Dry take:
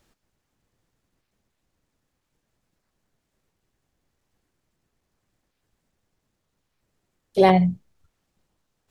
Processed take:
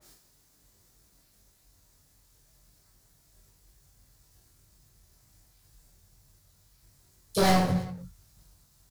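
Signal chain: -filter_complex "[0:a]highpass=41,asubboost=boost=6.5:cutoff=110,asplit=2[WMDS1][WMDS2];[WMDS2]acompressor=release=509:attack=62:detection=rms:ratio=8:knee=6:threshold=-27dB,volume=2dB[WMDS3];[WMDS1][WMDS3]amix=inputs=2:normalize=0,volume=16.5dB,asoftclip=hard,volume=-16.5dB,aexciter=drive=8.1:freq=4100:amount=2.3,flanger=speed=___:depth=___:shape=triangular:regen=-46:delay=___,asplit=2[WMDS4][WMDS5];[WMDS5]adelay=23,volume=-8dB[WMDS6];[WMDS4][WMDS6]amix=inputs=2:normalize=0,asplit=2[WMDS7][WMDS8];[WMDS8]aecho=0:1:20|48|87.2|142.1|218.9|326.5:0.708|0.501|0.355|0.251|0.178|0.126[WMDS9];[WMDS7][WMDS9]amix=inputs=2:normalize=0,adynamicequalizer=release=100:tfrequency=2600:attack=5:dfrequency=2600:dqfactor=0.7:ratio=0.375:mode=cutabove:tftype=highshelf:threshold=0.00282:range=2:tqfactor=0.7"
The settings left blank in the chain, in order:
1.9, 2.3, 6.2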